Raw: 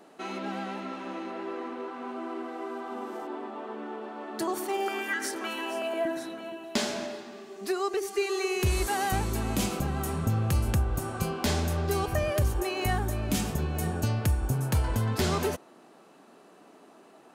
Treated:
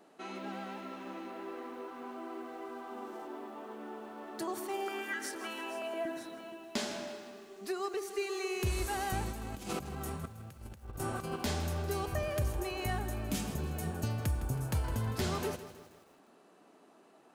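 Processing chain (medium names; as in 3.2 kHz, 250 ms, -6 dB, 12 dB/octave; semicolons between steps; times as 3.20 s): 9.31–11.36 s: compressor with a negative ratio -33 dBFS, ratio -0.5; bit-crushed delay 160 ms, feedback 55%, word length 8-bit, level -13 dB; trim -7 dB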